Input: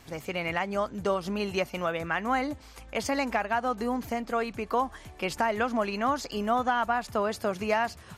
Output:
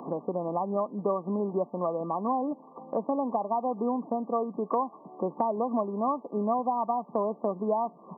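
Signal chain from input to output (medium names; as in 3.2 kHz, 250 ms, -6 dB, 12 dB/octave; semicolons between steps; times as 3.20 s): brick-wall FIR band-pass 160–1200 Hz; three bands compressed up and down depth 70%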